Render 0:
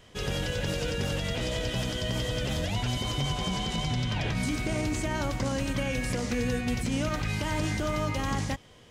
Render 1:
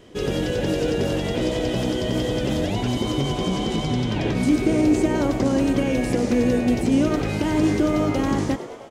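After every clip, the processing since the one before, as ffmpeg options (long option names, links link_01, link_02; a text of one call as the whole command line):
ffmpeg -i in.wav -filter_complex "[0:a]equalizer=frequency=330:width=1:gain=14.5,asplit=8[link_01][link_02][link_03][link_04][link_05][link_06][link_07][link_08];[link_02]adelay=103,afreqshift=92,volume=-13dB[link_09];[link_03]adelay=206,afreqshift=184,volume=-16.9dB[link_10];[link_04]adelay=309,afreqshift=276,volume=-20.8dB[link_11];[link_05]adelay=412,afreqshift=368,volume=-24.6dB[link_12];[link_06]adelay=515,afreqshift=460,volume=-28.5dB[link_13];[link_07]adelay=618,afreqshift=552,volume=-32.4dB[link_14];[link_08]adelay=721,afreqshift=644,volume=-36.3dB[link_15];[link_01][link_09][link_10][link_11][link_12][link_13][link_14][link_15]amix=inputs=8:normalize=0,volume=1dB" out.wav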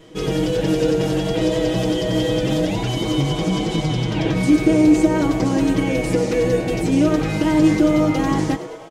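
ffmpeg -i in.wav -af "aecho=1:1:6.3:0.98" out.wav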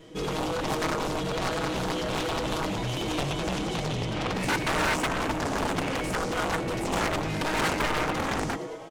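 ffmpeg -i in.wav -af "aeval=exprs='0.708*(cos(1*acos(clip(val(0)/0.708,-1,1)))-cos(1*PI/2))+0.224*(cos(7*acos(clip(val(0)/0.708,-1,1)))-cos(7*PI/2))':channel_layout=same,aeval=exprs='0.266*(abs(mod(val(0)/0.266+3,4)-2)-1)':channel_layout=same,volume=-5.5dB" out.wav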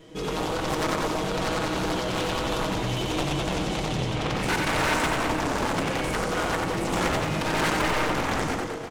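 ffmpeg -i in.wav -af "aecho=1:1:90|202.5|343.1|518.9|738.6:0.631|0.398|0.251|0.158|0.1" out.wav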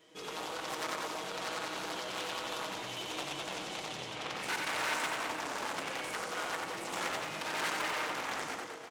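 ffmpeg -i in.wav -af "highpass=frequency=930:poles=1,volume=-7dB" out.wav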